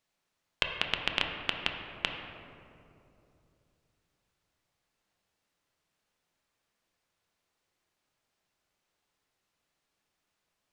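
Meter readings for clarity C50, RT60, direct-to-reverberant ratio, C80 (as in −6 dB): 4.5 dB, 2.8 s, 2.5 dB, 5.5 dB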